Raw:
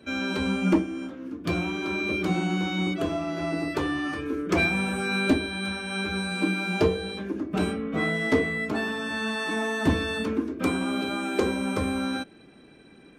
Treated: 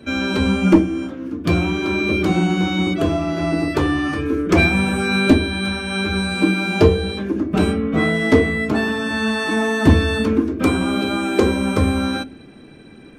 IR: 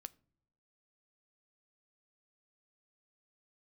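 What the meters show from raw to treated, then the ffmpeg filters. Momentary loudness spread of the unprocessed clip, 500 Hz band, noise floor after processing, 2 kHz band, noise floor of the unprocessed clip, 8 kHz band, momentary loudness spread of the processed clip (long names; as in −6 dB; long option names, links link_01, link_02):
6 LU, +8.5 dB, −42 dBFS, +6.5 dB, −52 dBFS, +6.5 dB, 7 LU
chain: -filter_complex "[0:a]bandreject=frequency=60:width_type=h:width=6,bandreject=frequency=120:width_type=h:width=6,bandreject=frequency=180:width_type=h:width=6,asplit=2[link_01][link_02];[1:a]atrim=start_sample=2205,lowshelf=frequency=230:gain=11[link_03];[link_02][link_03]afir=irnorm=-1:irlink=0,volume=10dB[link_04];[link_01][link_04]amix=inputs=2:normalize=0,volume=-1.5dB"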